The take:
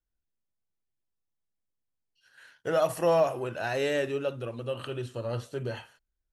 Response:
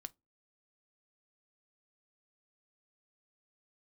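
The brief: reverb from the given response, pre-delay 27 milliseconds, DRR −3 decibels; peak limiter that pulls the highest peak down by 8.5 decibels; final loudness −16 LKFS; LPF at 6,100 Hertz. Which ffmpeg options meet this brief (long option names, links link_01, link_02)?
-filter_complex "[0:a]lowpass=6100,alimiter=limit=-21.5dB:level=0:latency=1,asplit=2[link_01][link_02];[1:a]atrim=start_sample=2205,adelay=27[link_03];[link_02][link_03]afir=irnorm=-1:irlink=0,volume=8dB[link_04];[link_01][link_04]amix=inputs=2:normalize=0,volume=12.5dB"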